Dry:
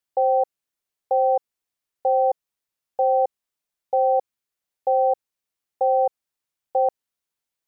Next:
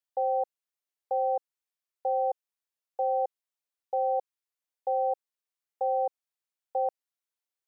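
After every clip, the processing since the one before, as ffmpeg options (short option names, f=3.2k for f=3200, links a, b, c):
-af "highpass=380,volume=-7.5dB"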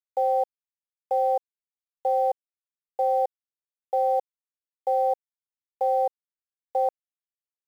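-af "aresample=11025,aeval=exprs='sgn(val(0))*max(abs(val(0))-0.00106,0)':c=same,aresample=44100,acrusher=bits=9:mix=0:aa=0.000001,volume=4.5dB"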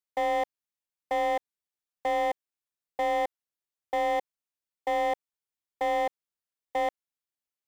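-af "asoftclip=type=hard:threshold=-25dB,volume=1dB"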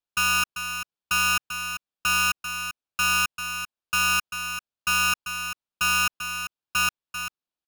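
-af "highpass=290,lowpass=2.8k,aecho=1:1:392:0.355,aeval=exprs='val(0)*sgn(sin(2*PI*2000*n/s))':c=same,volume=4.5dB"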